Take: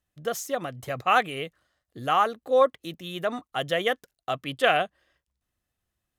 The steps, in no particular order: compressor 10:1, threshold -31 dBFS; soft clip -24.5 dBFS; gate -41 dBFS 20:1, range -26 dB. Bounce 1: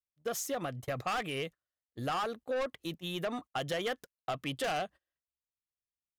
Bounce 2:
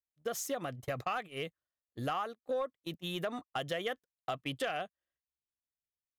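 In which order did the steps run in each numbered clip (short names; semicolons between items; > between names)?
gate > soft clip > compressor; compressor > gate > soft clip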